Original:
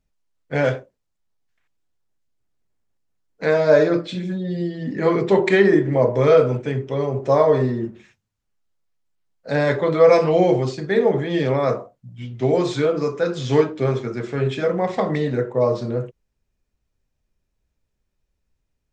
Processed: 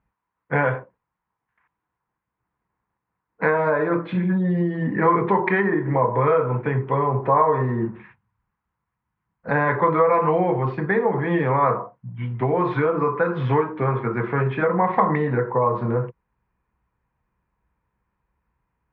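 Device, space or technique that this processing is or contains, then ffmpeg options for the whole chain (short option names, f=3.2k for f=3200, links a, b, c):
bass amplifier: -filter_complex "[0:a]acompressor=threshold=-22dB:ratio=4,highpass=75,equalizer=f=90:t=q:w=4:g=-10,equalizer=f=150:t=q:w=4:g=-4,equalizer=f=260:t=q:w=4:g=-9,equalizer=f=390:t=q:w=4:g=-7,equalizer=f=600:t=q:w=4:g=-10,equalizer=f=1k:t=q:w=4:g=10,lowpass=f=2k:w=0.5412,lowpass=f=2k:w=1.3066,asettb=1/sr,asplit=3[a][b][c];[a]atrim=end=7.844[d];[b]atrim=start=7.84:end=9.5,asetpts=PTS-STARTPTS,afade=t=in:d=0.004:c=qsin,afade=t=out:st=1.656:d=0.004:c=qsin,asubboost=boost=7:cutoff=240[e];[c]atrim=start=9.496[f];[d][e]acrossfade=d=0.004:c1=hsin:c2=qsin[g];[g][f]acrossfade=d=0.004:c1=qsin:c2=hsin,volume=9dB"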